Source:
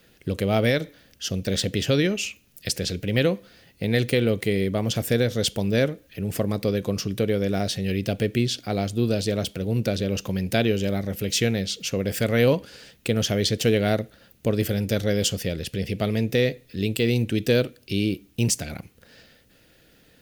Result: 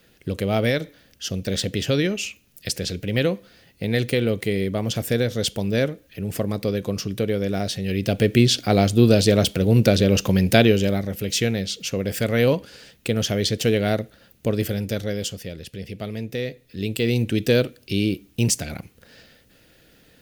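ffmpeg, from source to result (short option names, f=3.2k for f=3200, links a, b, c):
-af "volume=16.5dB,afade=t=in:st=7.87:d=0.67:silence=0.398107,afade=t=out:st=10.44:d=0.67:silence=0.421697,afade=t=out:st=14.55:d=0.82:silence=0.446684,afade=t=in:st=16.46:d=0.83:silence=0.375837"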